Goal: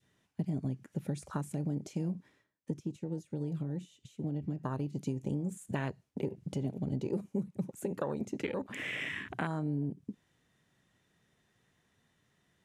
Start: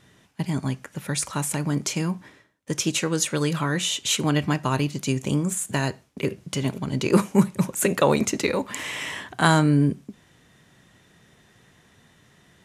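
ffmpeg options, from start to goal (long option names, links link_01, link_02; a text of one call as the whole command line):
ffmpeg -i in.wav -filter_complex "[0:a]acompressor=threshold=-30dB:ratio=12,adynamicequalizer=threshold=0.00316:dfrequency=1100:dqfactor=1:tfrequency=1100:tqfactor=1:attack=5:release=100:ratio=0.375:range=2:mode=cutabove:tftype=bell,asettb=1/sr,asplit=3[link_01][link_02][link_03];[link_01]atrim=end=2.154[link_04];[link_02]atrim=start=2.15:end=4.63,asetpts=PTS-STARTPTS,afade=type=in:duration=0.004:curve=qsin,afade=type=out:start_time=2.476:duration=0.004:curve=qsin,acrossover=split=360[link_05][link_06];[link_06]acompressor=threshold=-43dB:ratio=10[link_07];[link_05][link_07]amix=inputs=2:normalize=0[link_08];[link_03]atrim=start=4.626[link_09];[link_04][link_08]acrossfade=duration=0.004:curve1=hsin:curve2=qsin[link_10];[link_10][link_09]acrossfade=duration=0.004:curve1=qsin:curve2=hsin,afwtdn=0.0126" out.wav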